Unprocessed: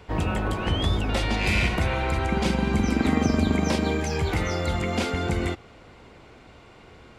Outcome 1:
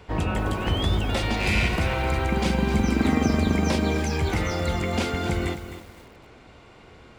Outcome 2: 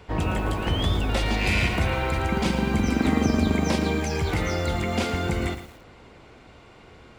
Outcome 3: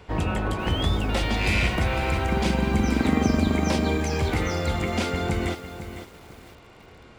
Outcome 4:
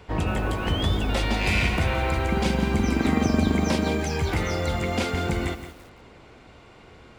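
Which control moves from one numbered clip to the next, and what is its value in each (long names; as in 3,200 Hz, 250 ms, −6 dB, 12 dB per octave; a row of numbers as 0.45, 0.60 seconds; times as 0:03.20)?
feedback echo at a low word length, delay time: 258, 113, 503, 170 milliseconds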